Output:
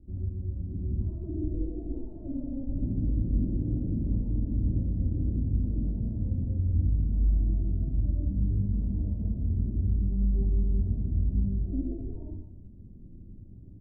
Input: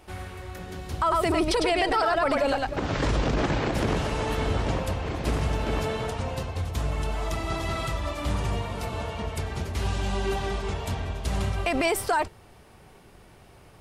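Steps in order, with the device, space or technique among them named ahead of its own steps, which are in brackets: club heard from the street (peak limiter -25 dBFS, peak gain reduction 9.5 dB; low-pass 250 Hz 24 dB/octave; reverberation RT60 0.90 s, pre-delay 52 ms, DRR -3.5 dB); comb 3.5 ms, depth 33%; trim +3.5 dB

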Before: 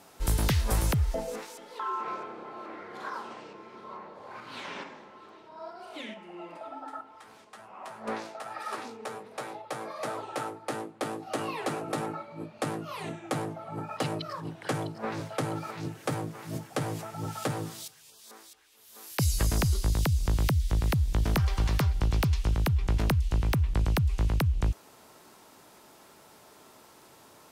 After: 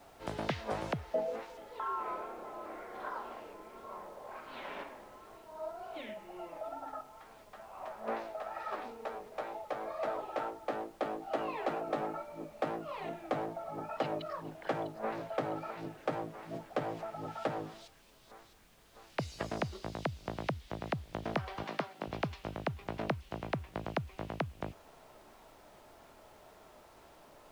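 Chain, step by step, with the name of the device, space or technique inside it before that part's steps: horn gramophone (band-pass 200–3100 Hz; peaking EQ 650 Hz +7.5 dB 0.6 oct; wow and flutter; pink noise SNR 24 dB); 21.63–22.07 s: high-pass 180 Hz 24 dB/octave; trim -5 dB

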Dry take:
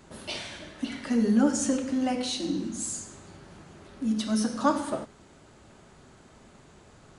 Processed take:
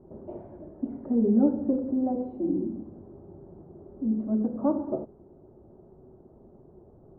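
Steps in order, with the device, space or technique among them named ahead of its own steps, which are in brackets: under water (low-pass 730 Hz 24 dB/octave; peaking EQ 370 Hz +9 dB 0.28 oct)

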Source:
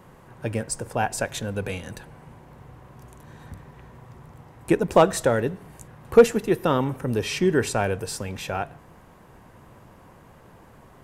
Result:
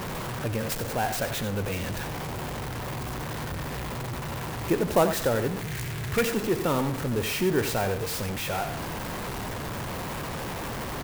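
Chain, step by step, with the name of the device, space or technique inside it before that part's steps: 5.61–6.25 s: graphic EQ 125/250/500/1000/2000/4000/8000 Hz +9/-6/-8/-8/+11/+4/+6 dB; early CD player with a faulty converter (jump at every zero crossing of -21.5 dBFS; sampling jitter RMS 0.031 ms); delay 89 ms -10.5 dB; trim -6.5 dB

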